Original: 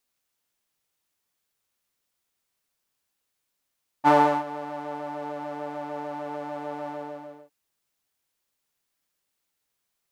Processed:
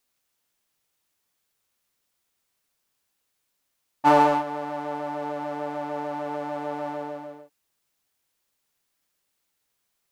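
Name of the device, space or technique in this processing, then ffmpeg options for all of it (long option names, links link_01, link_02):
parallel distortion: -filter_complex "[0:a]asplit=2[link_01][link_02];[link_02]asoftclip=type=hard:threshold=-23.5dB,volume=-7.5dB[link_03];[link_01][link_03]amix=inputs=2:normalize=0"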